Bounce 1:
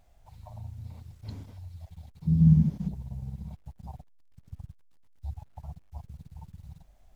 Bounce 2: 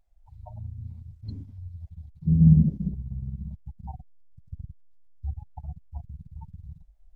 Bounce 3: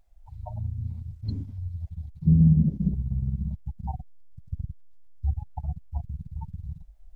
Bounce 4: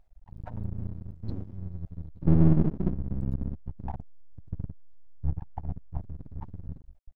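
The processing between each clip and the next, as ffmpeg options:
ffmpeg -i in.wav -af "afftdn=noise_reduction=23:noise_floor=-39,equalizer=frequency=140:width_type=o:width=2.1:gain=-4.5,volume=7dB" out.wav
ffmpeg -i in.wav -af "alimiter=limit=-16.5dB:level=0:latency=1:release=456,volume=6dB" out.wav
ffmpeg -i in.wav -af "aeval=exprs='max(val(0),0)':channel_layout=same,highshelf=frequency=3500:gain=-11.5,volume=2dB" out.wav

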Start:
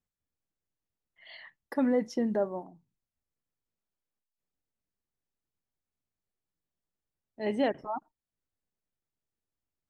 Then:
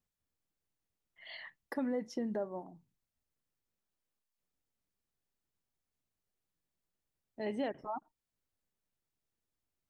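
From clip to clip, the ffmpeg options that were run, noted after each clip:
ffmpeg -i in.wav -af "acompressor=threshold=-41dB:ratio=2,volume=1dB" out.wav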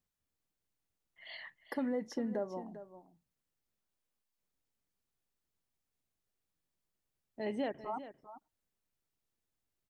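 ffmpeg -i in.wav -af "aecho=1:1:397:0.224" out.wav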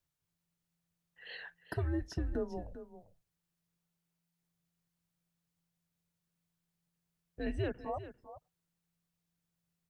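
ffmpeg -i in.wav -af "afreqshift=-170,volume=1dB" out.wav

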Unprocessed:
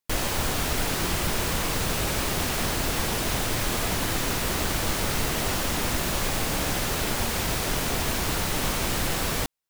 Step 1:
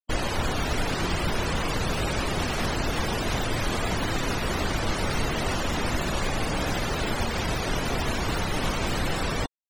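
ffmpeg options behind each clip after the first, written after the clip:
ffmpeg -i in.wav -af "afftfilt=real='re*gte(hypot(re,im),0.0355)':imag='im*gte(hypot(re,im),0.0355)':win_size=1024:overlap=0.75,volume=1dB" out.wav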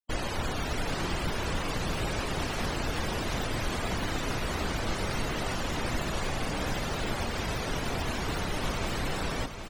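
ffmpeg -i in.wav -af "aecho=1:1:768|1536|2304|3072:0.355|0.121|0.041|0.0139,volume=-5dB" out.wav

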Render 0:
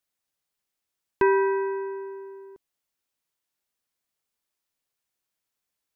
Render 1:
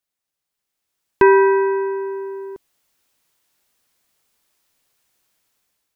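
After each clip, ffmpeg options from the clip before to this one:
ffmpeg -i in.wav -af "dynaudnorm=framelen=330:gausssize=5:maxgain=15.5dB" out.wav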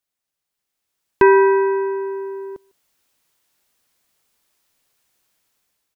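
ffmpeg -i in.wav -filter_complex "[0:a]asplit=2[link_01][link_02];[link_02]adelay=151.6,volume=-27dB,highshelf=frequency=4000:gain=-3.41[link_03];[link_01][link_03]amix=inputs=2:normalize=0" out.wav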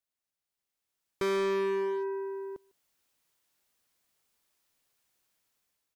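ffmpeg -i in.wav -af "asoftclip=type=hard:threshold=-19.5dB,volume=-8dB" out.wav

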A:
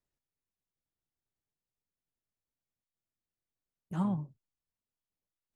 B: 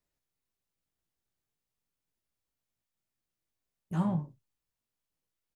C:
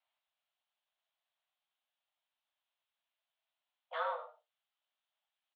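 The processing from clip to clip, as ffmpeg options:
ffmpeg -i in.wav -filter_complex "[0:a]asplit=2[link_01][link_02];[link_02]asoftclip=type=hard:threshold=-33dB,volume=-9dB[link_03];[link_01][link_03]amix=inputs=2:normalize=0,aecho=1:1:18|55:0.531|0.2" out.wav
ffmpeg -i in.wav -af "aexciter=amount=1.9:drive=6.1:freq=2600,aecho=1:1:98:0.251,highpass=frequency=300:width_type=q:width=0.5412,highpass=frequency=300:width_type=q:width=1.307,lowpass=frequency=3300:width_type=q:width=0.5176,lowpass=frequency=3300:width_type=q:width=0.7071,lowpass=frequency=3300:width_type=q:width=1.932,afreqshift=330,volume=2dB" out.wav

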